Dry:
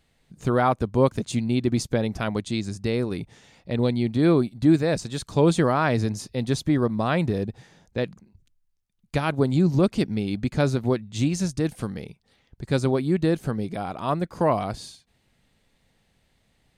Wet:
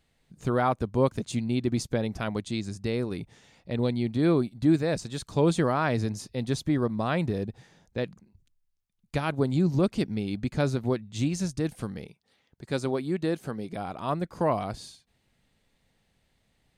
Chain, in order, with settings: 12.06–13.73 s: high-pass 220 Hz 6 dB/octave; trim -4 dB

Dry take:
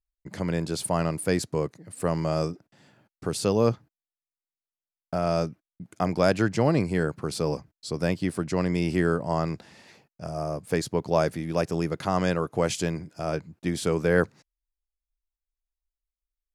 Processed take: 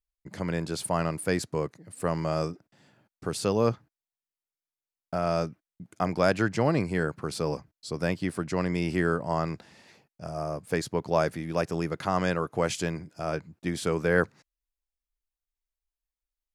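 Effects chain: dynamic bell 1.5 kHz, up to +4 dB, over -42 dBFS, Q 0.76; trim -3 dB

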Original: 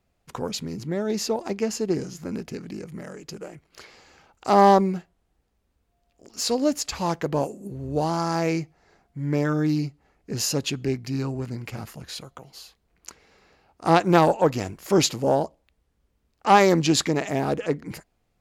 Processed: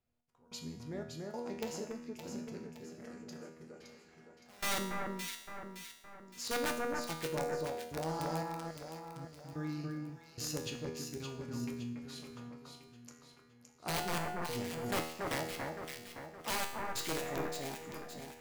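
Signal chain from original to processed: in parallel at -3 dB: peak limiter -11 dBFS, peak gain reduction 8.5 dB; on the sum: feedback comb 120 Hz, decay 0.5 s, harmonics all, mix 70%; integer overflow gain 18 dB; trance gate "xx...xxx" 146 bpm -24 dB; feedback comb 80 Hz, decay 0.74 s, harmonics all, mix 80%; echo whose repeats swap between lows and highs 283 ms, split 1.9 kHz, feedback 66%, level -2 dB; trim -1 dB

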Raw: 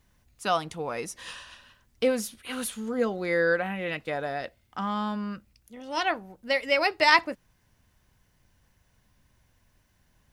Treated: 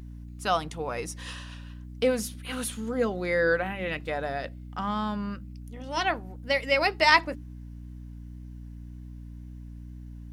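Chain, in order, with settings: de-hum 48.82 Hz, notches 7; hum 60 Hz, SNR 11 dB; wow and flutter 28 cents

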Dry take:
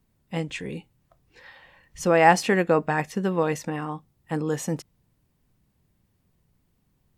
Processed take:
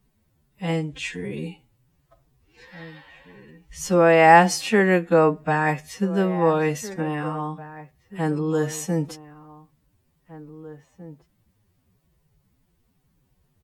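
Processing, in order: echo from a far wall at 190 m, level -17 dB; time stretch by phase-locked vocoder 1.9×; trim +3 dB

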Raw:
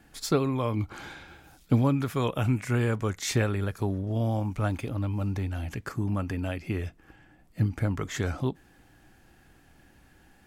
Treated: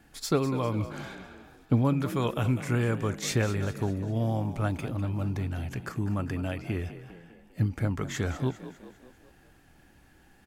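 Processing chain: 1.15–1.85 s: treble shelf 3.4 kHz -9 dB; frequency-shifting echo 200 ms, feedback 50%, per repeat +40 Hz, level -13 dB; trim -1 dB

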